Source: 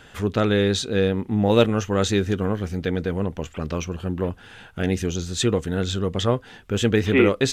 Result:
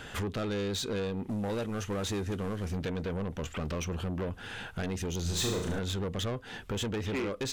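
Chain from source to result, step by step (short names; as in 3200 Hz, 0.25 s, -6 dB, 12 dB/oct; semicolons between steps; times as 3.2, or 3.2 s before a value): 1.29–2.71 CVSD 64 kbps; compressor 6:1, threshold -28 dBFS, peak gain reduction 16 dB; soft clip -32.5 dBFS, distortion -9 dB; 5.21–5.79 flutter echo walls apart 6.2 m, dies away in 0.65 s; gain +3.5 dB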